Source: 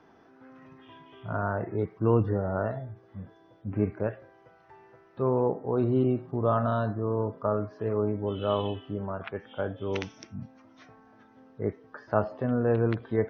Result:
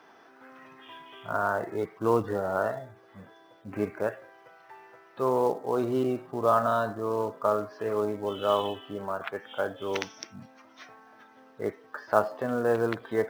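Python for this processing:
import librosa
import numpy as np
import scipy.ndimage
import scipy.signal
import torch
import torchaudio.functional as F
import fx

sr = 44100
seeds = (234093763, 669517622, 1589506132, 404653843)

p1 = fx.highpass(x, sr, hz=1000.0, slope=6)
p2 = fx.dynamic_eq(p1, sr, hz=2600.0, q=1.5, threshold_db=-54.0, ratio=4.0, max_db=-6)
p3 = fx.quant_float(p2, sr, bits=2)
p4 = p2 + (p3 * 10.0 ** (-5.0 / 20.0))
y = p4 * 10.0 ** (4.5 / 20.0)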